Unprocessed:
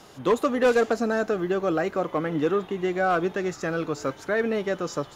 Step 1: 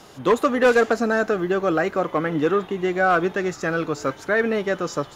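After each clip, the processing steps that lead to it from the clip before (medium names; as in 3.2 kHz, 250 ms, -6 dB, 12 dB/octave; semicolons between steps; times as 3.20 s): dynamic bell 1.6 kHz, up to +4 dB, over -35 dBFS, Q 1.2; trim +3 dB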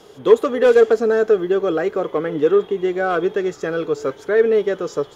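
small resonant body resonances 430/3300 Hz, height 14 dB, ringing for 35 ms; trim -4 dB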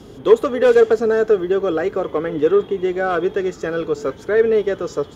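band noise 39–410 Hz -42 dBFS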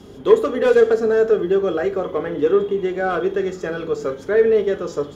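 reverberation RT60 0.45 s, pre-delay 5 ms, DRR 6.5 dB; trim -2.5 dB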